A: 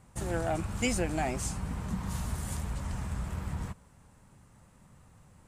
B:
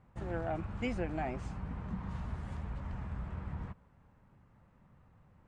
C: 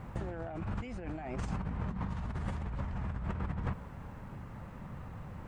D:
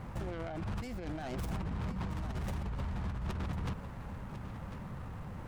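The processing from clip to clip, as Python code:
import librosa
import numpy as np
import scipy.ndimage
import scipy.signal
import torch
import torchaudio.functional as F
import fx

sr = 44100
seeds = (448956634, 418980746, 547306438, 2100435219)

y1 = scipy.signal.sosfilt(scipy.signal.butter(2, 2300.0, 'lowpass', fs=sr, output='sos'), x)
y1 = y1 * librosa.db_to_amplitude(-5.0)
y2 = fx.over_compress(y1, sr, threshold_db=-47.0, ratio=-1.0)
y2 = y2 * librosa.db_to_amplitude(10.0)
y3 = fx.tracing_dist(y2, sr, depth_ms=0.49)
y3 = 10.0 ** (-31.5 / 20.0) * np.tanh(y3 / 10.0 ** (-31.5 / 20.0))
y3 = y3 + 10.0 ** (-11.5 / 20.0) * np.pad(y3, (int(1048 * sr / 1000.0), 0))[:len(y3)]
y3 = y3 * librosa.db_to_amplitude(1.5)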